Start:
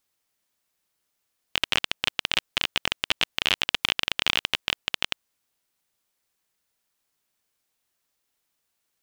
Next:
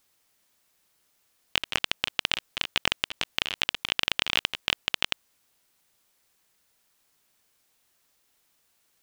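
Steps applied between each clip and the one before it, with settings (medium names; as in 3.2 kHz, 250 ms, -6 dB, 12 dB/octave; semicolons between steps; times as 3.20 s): compressor with a negative ratio -29 dBFS, ratio -0.5; trim +3 dB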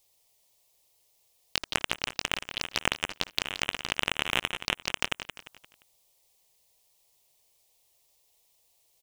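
touch-sensitive phaser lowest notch 240 Hz, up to 4.6 kHz, full sweep at -29.5 dBFS; on a send: feedback delay 174 ms, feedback 41%, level -11 dB; on the sum: trim +2 dB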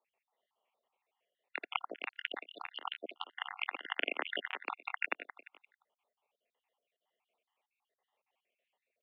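random holes in the spectrogram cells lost 58%; mistuned SSB +54 Hz 230–2700 Hz; trim -1.5 dB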